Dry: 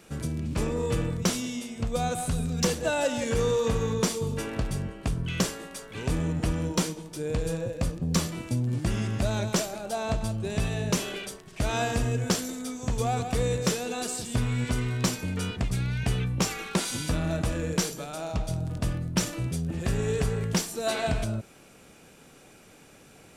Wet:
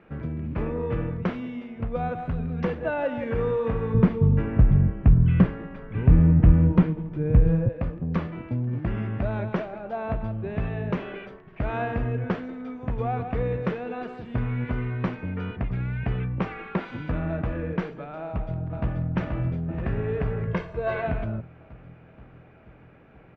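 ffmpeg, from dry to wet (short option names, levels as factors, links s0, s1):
-filter_complex "[0:a]asettb=1/sr,asplit=3[s0][s1][s2];[s0]atrim=end=3.944[s3];[s1]atrim=start=3.94:end=7.69,asetpts=PTS-STARTPTS,afade=t=in:d=0.004:c=qsin,afade=t=out:st=3.746:d=0.004:c=qsin,bass=f=250:g=14,treble=f=4000:g=-6[s4];[s2]atrim=start=7.686[s5];[s3][s4]acrossfade=d=0.004:c1=hsin:c2=qsin[s6];[s6][s5]acrossfade=d=0.004:c1=qsin:c2=hsin,asplit=2[s7][s8];[s8]afade=t=in:st=18.24:d=0.01,afade=t=out:st=19.06:d=0.01,aecho=0:1:480|960|1440|1920|2400|2880|3360|3840|4320|4800|5280|5760:0.630957|0.44167|0.309169|0.216418|0.151493|0.106045|0.0742315|0.0519621|0.0363734|0.0254614|0.017823|0.0124761[s9];[s7][s9]amix=inputs=2:normalize=0,asettb=1/sr,asplit=3[s10][s11][s12];[s10]atrim=end=20.474[s13];[s11]atrim=start=20.47:end=21.02,asetpts=PTS-STARTPTS,afade=t=in:d=0.004:c=qsin,afade=t=out:st=0.546:d=0.004:c=qsin,aecho=1:1:1.9:0.65,atrim=end_sample=24255[s14];[s12]atrim=start=21.016[s15];[s13][s14]acrossfade=d=0.004:c1=hsin:c2=qsin[s16];[s16][s15]acrossfade=d=0.004:c1=qsin:c2=hsin,lowpass=f=2200:w=0.5412,lowpass=f=2200:w=1.3066"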